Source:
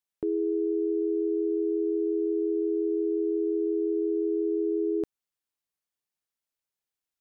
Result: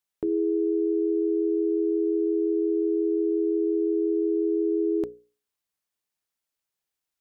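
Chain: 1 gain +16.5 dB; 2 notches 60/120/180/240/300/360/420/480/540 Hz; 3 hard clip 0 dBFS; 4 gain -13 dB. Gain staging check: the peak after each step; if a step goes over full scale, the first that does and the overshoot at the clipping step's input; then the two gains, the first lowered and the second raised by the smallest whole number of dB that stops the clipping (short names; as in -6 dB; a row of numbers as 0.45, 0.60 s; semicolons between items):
-4.5, -5.0, -5.0, -18.0 dBFS; no overload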